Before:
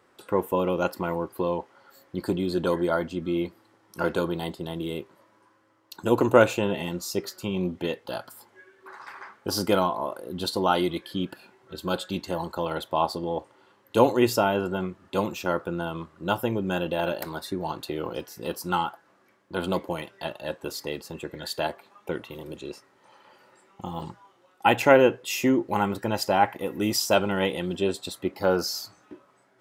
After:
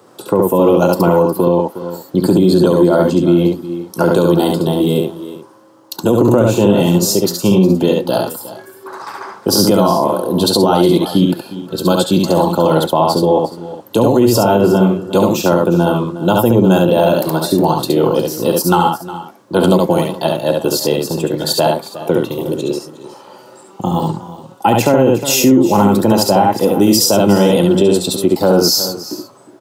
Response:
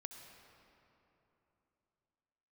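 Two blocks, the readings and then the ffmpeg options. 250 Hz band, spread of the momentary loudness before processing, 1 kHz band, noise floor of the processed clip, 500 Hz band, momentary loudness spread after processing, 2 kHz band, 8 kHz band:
+16.0 dB, 14 LU, +11.0 dB, -41 dBFS, +13.5 dB, 12 LU, +5.0 dB, +17.0 dB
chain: -filter_complex "[0:a]highpass=f=110:w=0.5412,highpass=f=110:w=1.3066,equalizer=f=2k:w=1.1:g=-14,acrossover=split=240[a][b];[b]acompressor=threshold=-25dB:ratio=6[c];[a][c]amix=inputs=2:normalize=0,aecho=1:1:69|360|418:0.668|0.15|0.106,alimiter=level_in=19.5dB:limit=-1dB:release=50:level=0:latency=1,volume=-1dB"

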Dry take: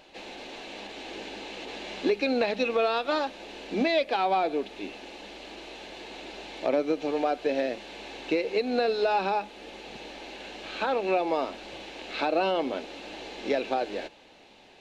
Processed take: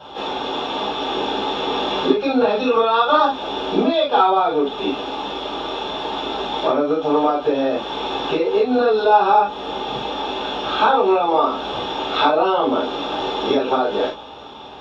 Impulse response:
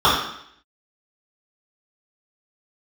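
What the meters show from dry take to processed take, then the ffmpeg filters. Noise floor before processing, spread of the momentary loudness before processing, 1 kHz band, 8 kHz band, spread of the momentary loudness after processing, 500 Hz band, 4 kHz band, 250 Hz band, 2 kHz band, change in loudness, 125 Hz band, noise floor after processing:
-54 dBFS, 16 LU, +13.0 dB, n/a, 10 LU, +9.5 dB, +12.5 dB, +10.0 dB, +6.5 dB, +9.5 dB, +10.5 dB, -36 dBFS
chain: -filter_complex "[0:a]acompressor=threshold=-31dB:ratio=6[a];[1:a]atrim=start_sample=2205,atrim=end_sample=3528[b];[a][b]afir=irnorm=-1:irlink=0,volume=-6dB"

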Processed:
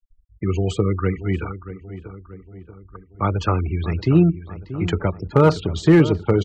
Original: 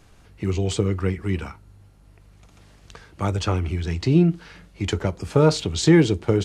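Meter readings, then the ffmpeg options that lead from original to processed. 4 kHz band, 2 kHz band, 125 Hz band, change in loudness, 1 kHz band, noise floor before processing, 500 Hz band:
-4.5 dB, +1.0 dB, +2.0 dB, +2.0 dB, +5.5 dB, -52 dBFS, +2.0 dB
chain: -filter_complex "[0:a]anlmdn=0.1,afftfilt=real='re*gte(hypot(re,im),0.0251)':imag='im*gte(hypot(re,im),0.0251)':win_size=1024:overlap=0.75,equalizer=f=1.2k:t=o:w=0.45:g=6.5,acrossover=split=560|2600[a][b][c];[c]acompressor=threshold=-40dB:ratio=6[d];[a][b][d]amix=inputs=3:normalize=0,asoftclip=type=hard:threshold=-7.5dB,asplit=2[e][f];[f]adelay=633,lowpass=f=1.8k:p=1,volume=-13dB,asplit=2[g][h];[h]adelay=633,lowpass=f=1.8k:p=1,volume=0.54,asplit=2[i][j];[j]adelay=633,lowpass=f=1.8k:p=1,volume=0.54,asplit=2[k][l];[l]adelay=633,lowpass=f=1.8k:p=1,volume=0.54,asplit=2[m][n];[n]adelay=633,lowpass=f=1.8k:p=1,volume=0.54,asplit=2[o][p];[p]adelay=633,lowpass=f=1.8k:p=1,volume=0.54[q];[e][g][i][k][m][o][q]amix=inputs=7:normalize=0,volume=2dB"

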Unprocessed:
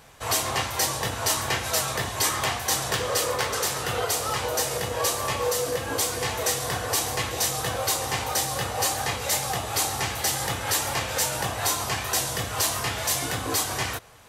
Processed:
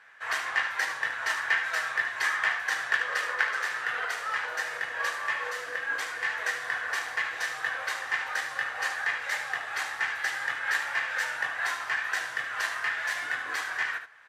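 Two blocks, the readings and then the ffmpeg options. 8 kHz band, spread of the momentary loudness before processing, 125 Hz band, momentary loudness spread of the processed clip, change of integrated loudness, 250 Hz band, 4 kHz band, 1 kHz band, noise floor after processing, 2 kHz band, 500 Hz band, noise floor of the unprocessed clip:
-17.5 dB, 2 LU, under -25 dB, 4 LU, -4.0 dB, under -20 dB, -10.0 dB, -5.5 dB, -38 dBFS, +5.5 dB, -14.5 dB, -33 dBFS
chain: -filter_complex "[0:a]asplit=2[a][b];[b]acrusher=bits=2:mix=0:aa=0.5,volume=-5dB[c];[a][c]amix=inputs=2:normalize=0,bandpass=f=1.7k:t=q:w=5:csg=0,aecho=1:1:74:0.355,volume=7.5dB"

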